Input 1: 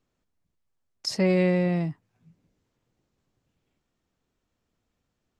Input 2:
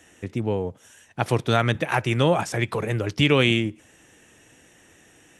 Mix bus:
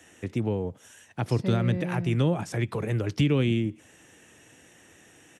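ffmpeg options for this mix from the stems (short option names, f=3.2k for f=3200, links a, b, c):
-filter_complex "[0:a]adelay=250,volume=-6.5dB[a];[1:a]volume=-0.5dB[b];[a][b]amix=inputs=2:normalize=0,highpass=61,acrossover=split=360[c][d];[d]acompressor=threshold=-34dB:ratio=4[e];[c][e]amix=inputs=2:normalize=0"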